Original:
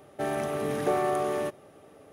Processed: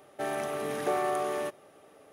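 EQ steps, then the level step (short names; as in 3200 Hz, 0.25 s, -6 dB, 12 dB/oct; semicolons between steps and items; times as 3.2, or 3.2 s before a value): bell 78 Hz -4 dB 2 oct; low shelf 390 Hz -7.5 dB; 0.0 dB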